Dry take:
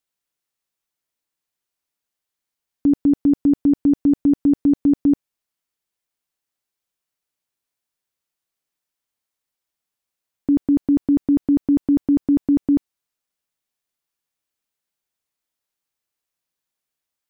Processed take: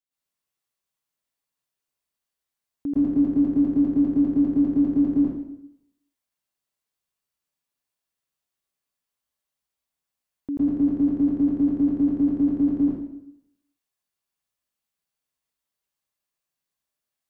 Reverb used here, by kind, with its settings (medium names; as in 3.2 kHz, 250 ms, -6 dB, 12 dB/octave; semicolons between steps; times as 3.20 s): plate-style reverb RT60 0.77 s, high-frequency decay 0.85×, pre-delay 100 ms, DRR -10 dB; trim -12 dB